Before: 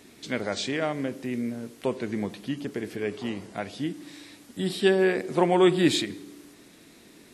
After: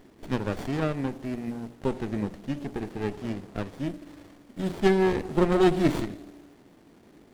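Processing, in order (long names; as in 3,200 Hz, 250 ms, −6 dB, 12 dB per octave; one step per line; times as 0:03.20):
mains-hum notches 60/120/180/240/300 Hz
windowed peak hold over 33 samples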